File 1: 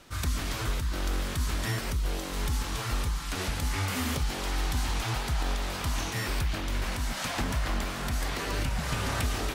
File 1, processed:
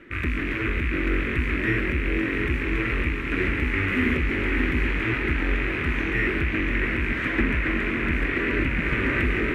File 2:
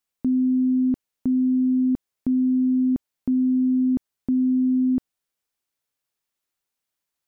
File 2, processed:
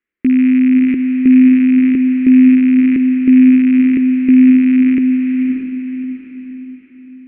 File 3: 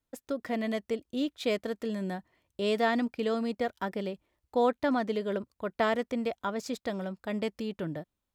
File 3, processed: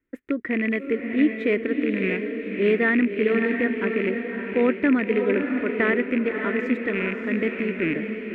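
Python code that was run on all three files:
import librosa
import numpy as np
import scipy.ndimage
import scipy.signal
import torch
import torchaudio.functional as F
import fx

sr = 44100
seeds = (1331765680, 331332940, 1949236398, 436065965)

y = fx.rattle_buzz(x, sr, strikes_db=-38.0, level_db=-24.0)
y = fx.curve_eq(y, sr, hz=(150.0, 350.0, 780.0, 2000.0, 4800.0), db=(0, 13, -11, 12, -22))
y = fx.echo_diffused(y, sr, ms=608, feedback_pct=43, wet_db=-5)
y = F.gain(torch.from_numpy(y), 1.5).numpy()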